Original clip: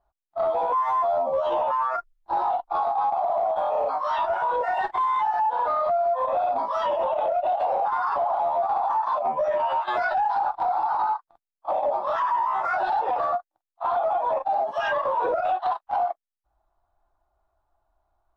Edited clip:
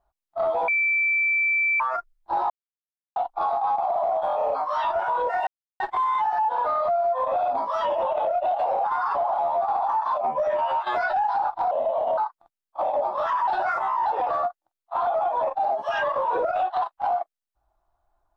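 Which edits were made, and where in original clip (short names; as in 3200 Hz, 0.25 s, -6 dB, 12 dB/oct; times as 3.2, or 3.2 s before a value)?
0.68–1.8 bleep 2330 Hz -19 dBFS
2.5 insert silence 0.66 s
4.81 insert silence 0.33 s
10.72–11.07 speed 75%
12.37–12.95 reverse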